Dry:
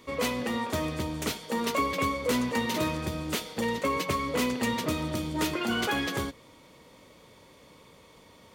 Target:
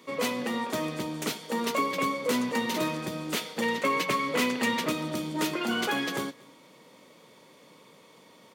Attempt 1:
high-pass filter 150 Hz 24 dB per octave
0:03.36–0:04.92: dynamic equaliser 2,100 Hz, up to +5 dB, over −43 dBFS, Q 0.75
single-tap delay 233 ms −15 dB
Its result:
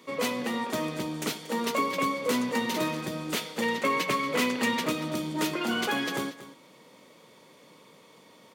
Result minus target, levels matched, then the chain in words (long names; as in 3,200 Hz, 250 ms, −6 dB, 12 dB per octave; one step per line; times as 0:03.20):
echo-to-direct +11 dB
high-pass filter 150 Hz 24 dB per octave
0:03.36–0:04.92: dynamic equaliser 2,100 Hz, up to +5 dB, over −43 dBFS, Q 0.75
single-tap delay 233 ms −26 dB